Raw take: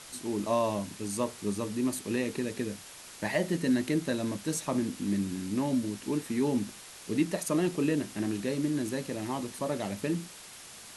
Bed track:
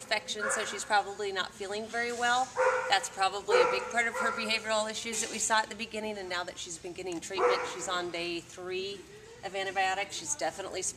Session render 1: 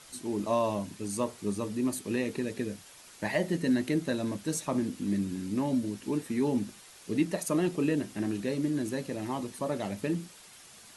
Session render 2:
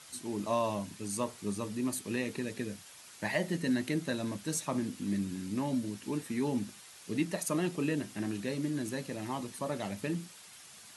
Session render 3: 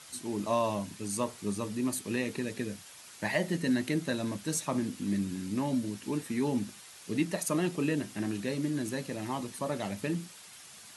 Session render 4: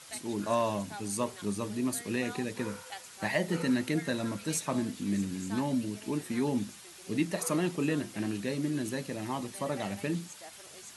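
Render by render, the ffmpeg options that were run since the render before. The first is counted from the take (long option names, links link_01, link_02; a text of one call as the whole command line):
ffmpeg -i in.wav -af "afftdn=noise_reduction=6:noise_floor=-48" out.wav
ffmpeg -i in.wav -af "highpass=85,equalizer=frequency=380:width_type=o:width=2:gain=-5" out.wav
ffmpeg -i in.wav -af "volume=2dB" out.wav
ffmpeg -i in.wav -i bed.wav -filter_complex "[1:a]volume=-17.5dB[link_01];[0:a][link_01]amix=inputs=2:normalize=0" out.wav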